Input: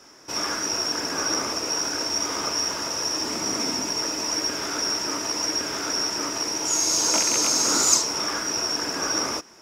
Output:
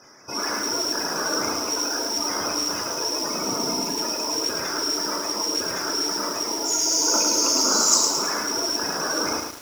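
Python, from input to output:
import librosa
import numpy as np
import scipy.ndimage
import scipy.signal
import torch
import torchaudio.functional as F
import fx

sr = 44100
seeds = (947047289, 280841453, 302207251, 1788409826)

y = fx.spec_quant(x, sr, step_db=30)
y = fx.room_flutter(y, sr, wall_m=5.8, rt60_s=0.23)
y = fx.echo_crushed(y, sr, ms=108, feedback_pct=55, bits=6, wet_db=-4)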